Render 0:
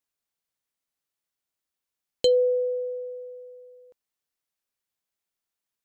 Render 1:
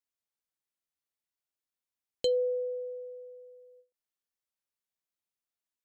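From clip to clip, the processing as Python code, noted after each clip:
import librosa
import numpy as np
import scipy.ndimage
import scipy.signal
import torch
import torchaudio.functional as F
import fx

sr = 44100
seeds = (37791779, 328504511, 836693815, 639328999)

y = fx.end_taper(x, sr, db_per_s=260.0)
y = y * librosa.db_to_amplitude(-7.5)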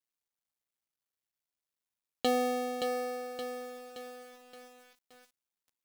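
y = fx.cycle_switch(x, sr, every=2, mode='muted')
y = fx.echo_crushed(y, sr, ms=572, feedback_pct=55, bits=9, wet_db=-5.5)
y = y * librosa.db_to_amplitude(2.0)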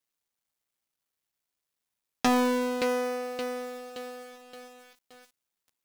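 y = fx.doppler_dist(x, sr, depth_ms=0.54)
y = y * librosa.db_to_amplitude(5.5)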